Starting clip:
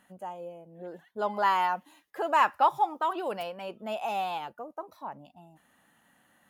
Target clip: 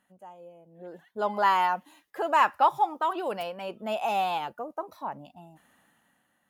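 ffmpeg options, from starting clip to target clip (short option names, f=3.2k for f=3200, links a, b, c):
-af "dynaudnorm=f=260:g=7:m=13dB,volume=-8.5dB"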